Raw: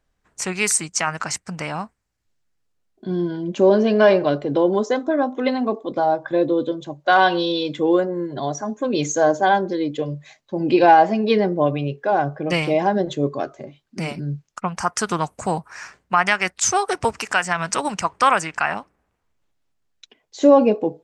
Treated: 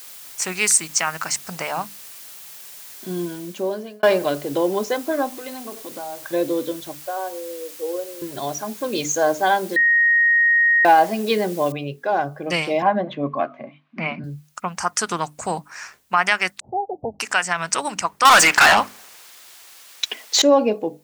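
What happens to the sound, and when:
1.42–1.82 bell 710 Hz +5.5 dB 1.4 oct
3.19–4.03 fade out
5.29–6.3 compressor 4:1, threshold -29 dBFS
7.01–8.22 ladder band-pass 530 Hz, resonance 60%
9.76–10.85 bleep 1870 Hz -13 dBFS
11.72 noise floor step -44 dB -68 dB
12.82–14.24 speaker cabinet 140–3000 Hz, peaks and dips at 150 Hz +4 dB, 240 Hz +9 dB, 400 Hz -9 dB, 670 Hz +7 dB, 1100 Hz +10 dB, 2300 Hz +7 dB
16.6–17.2 rippled Chebyshev low-pass 830 Hz, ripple 3 dB
18.25–20.42 overdrive pedal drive 31 dB, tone 4700 Hz, clips at -3.5 dBFS
whole clip: tilt +1.5 dB/oct; notches 50/100/150/200/250/300 Hz; gain -1 dB

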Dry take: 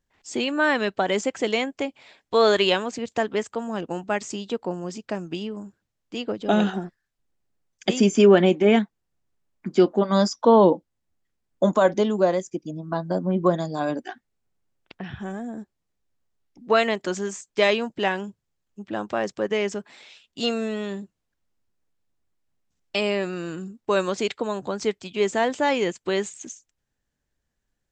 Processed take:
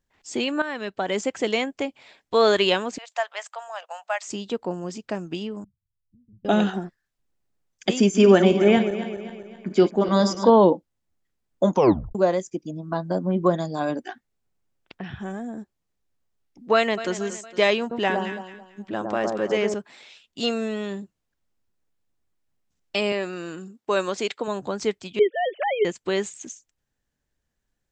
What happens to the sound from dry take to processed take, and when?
0.62–1.33 fade in, from -13 dB
2.98–4.28 elliptic high-pass 630 Hz, stop band 50 dB
5.64–6.45 inverse Chebyshev low-pass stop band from 710 Hz, stop band 80 dB
7.99–10.5 regenerating reverse delay 0.131 s, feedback 66%, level -10 dB
11.72 tape stop 0.43 s
16.74–17.15 echo throw 0.23 s, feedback 50%, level -13.5 dB
17.8–19.74 echo with dull and thin repeats by turns 0.11 s, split 1200 Hz, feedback 54%, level -2.5 dB
23.12–24.48 HPF 270 Hz 6 dB/oct
25.19–25.85 sine-wave speech

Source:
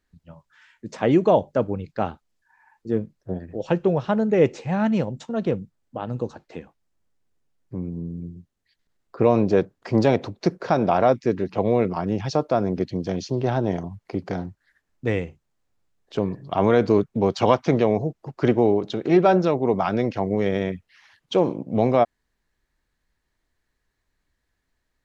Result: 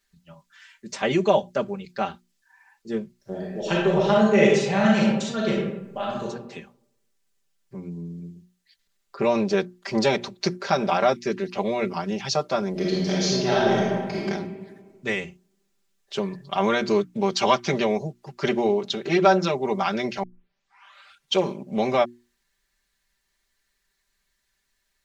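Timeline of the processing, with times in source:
3.16–6.24 reverb throw, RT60 0.84 s, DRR -3.5 dB
12.71–14.21 reverb throw, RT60 1.6 s, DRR -5.5 dB
20.23 tape start 1.12 s
whole clip: tilt shelf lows -7.5 dB, about 1500 Hz; notches 60/120/180/240/300/360 Hz; comb 5.1 ms, depth 93%

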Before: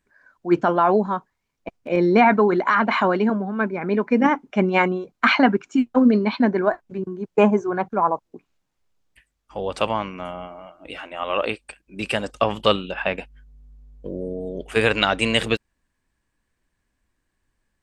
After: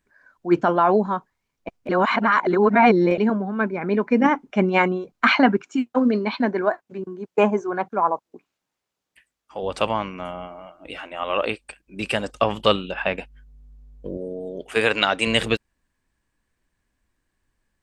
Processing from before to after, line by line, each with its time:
1.89–3.18 reverse
5.63–9.63 HPF 300 Hz 6 dB/oct
14.17–15.27 HPF 270 Hz 6 dB/oct

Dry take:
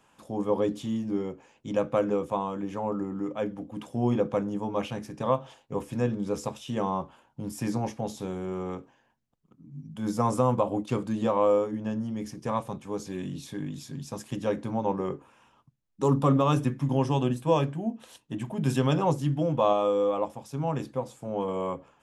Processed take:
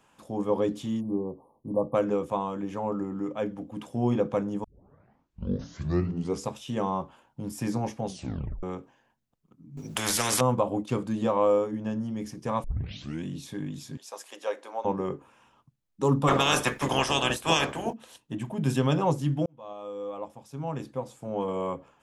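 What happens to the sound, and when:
1–1.94 spectral delete 1200–9100 Hz
4.64 tape start 1.83 s
8.06 tape stop 0.57 s
9.77–10.41 spectral compressor 4:1
12.64 tape start 0.60 s
13.97–14.85 HPF 490 Hz 24 dB/oct
16.27–17.92 spectral limiter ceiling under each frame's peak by 29 dB
19.46–21.39 fade in

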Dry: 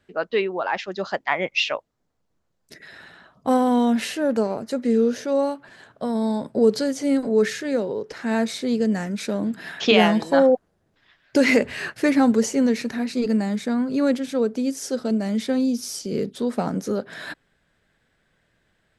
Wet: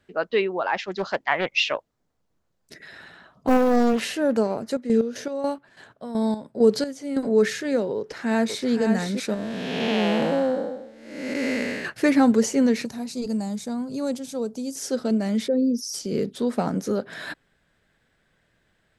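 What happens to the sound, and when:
0.86–4.14 Doppler distortion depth 0.8 ms
4.69–7.28 chopper 4.5 Hz -> 1.5 Hz, depth 65%, duty 45%
7.97–8.67 echo throw 0.52 s, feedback 40%, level -5.5 dB
9.34–11.85 time blur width 0.443 s
12.85–14.76 EQ curve 130 Hz 0 dB, 320 Hz -9 dB, 870 Hz -3 dB, 1800 Hz -15 dB, 6400 Hz +3 dB
15.48–15.94 formant sharpening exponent 2

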